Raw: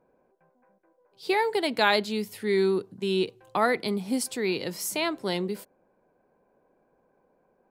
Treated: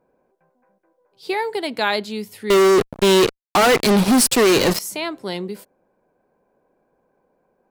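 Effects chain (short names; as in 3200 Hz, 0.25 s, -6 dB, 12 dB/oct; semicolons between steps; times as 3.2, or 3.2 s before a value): 2.5–4.79 fuzz box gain 37 dB, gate -40 dBFS; gain +1.5 dB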